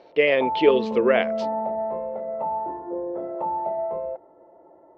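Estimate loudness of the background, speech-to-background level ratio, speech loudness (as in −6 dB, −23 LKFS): −28.5 LKFS, 8.0 dB, −20.5 LKFS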